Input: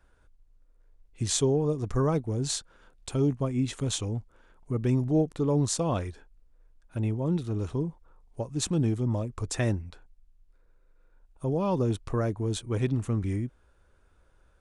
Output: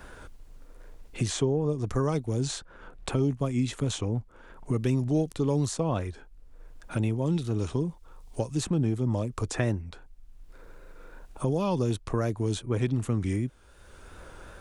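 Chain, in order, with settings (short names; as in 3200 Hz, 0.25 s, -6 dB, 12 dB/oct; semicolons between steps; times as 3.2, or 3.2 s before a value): vibrato 2.7 Hz 43 cents; three-band squash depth 70%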